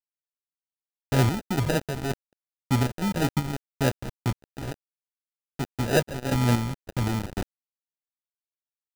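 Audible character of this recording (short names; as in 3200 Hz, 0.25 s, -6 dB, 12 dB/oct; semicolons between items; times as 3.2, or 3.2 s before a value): chopped level 1.9 Hz, depth 65%, duty 45%; a quantiser's noise floor 6-bit, dither none; phasing stages 4, 3.4 Hz, lowest notch 400–2100 Hz; aliases and images of a low sample rate 1100 Hz, jitter 0%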